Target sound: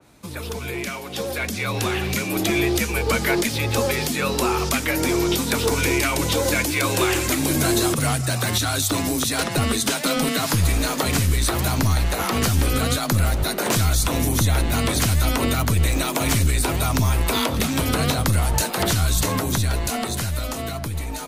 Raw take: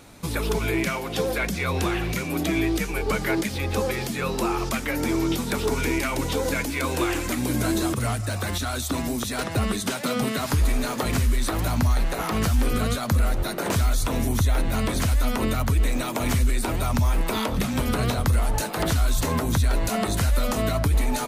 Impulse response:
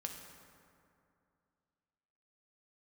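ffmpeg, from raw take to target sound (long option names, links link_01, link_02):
-filter_complex "[0:a]afreqshift=23,acrossover=split=490[link_01][link_02];[link_01]aeval=exprs='clip(val(0),-1,0.0562)':channel_layout=same[link_03];[link_03][link_02]amix=inputs=2:normalize=0,dynaudnorm=framelen=260:gausssize=13:maxgain=10.5dB,adynamicequalizer=threshold=0.02:dfrequency=2400:dqfactor=0.7:tfrequency=2400:tqfactor=0.7:attack=5:release=100:ratio=0.375:range=2.5:mode=boostabove:tftype=highshelf,volume=-5.5dB"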